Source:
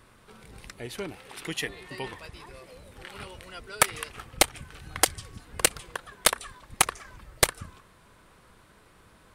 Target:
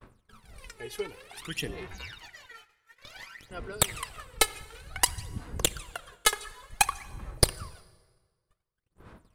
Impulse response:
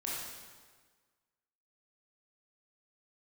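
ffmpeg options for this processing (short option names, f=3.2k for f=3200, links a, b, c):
-filter_complex "[0:a]asettb=1/sr,asplit=3[a][b][c];[a]atrim=end=1.874[d];[b]atrim=start=1.87:end=3.51,asetpts=PTS-STARTPTS,afade=t=in:d=0.004:c=qsin,afade=t=out:st=1.636:d=0.004:c=qsin,aeval=exprs='val(0)*sin(2*PI*1900*n/s)':c=same[e];[c]atrim=start=3.506[f];[d][e]acrossfade=d=0.004:c1=hsin:c2=qsin[g];[g][f]acrossfade=d=0.004:c1=qsin:c2=hsin,aphaser=in_gain=1:out_gain=1:delay=2.4:decay=0.79:speed=0.55:type=sinusoidal,agate=range=-39dB:threshold=-45dB:ratio=16:detection=peak,asplit=2[h][i];[1:a]atrim=start_sample=2205,highshelf=f=10k:g=-5.5[j];[i][j]afir=irnorm=-1:irlink=0,volume=-18.5dB[k];[h][k]amix=inputs=2:normalize=0,volume=-6.5dB"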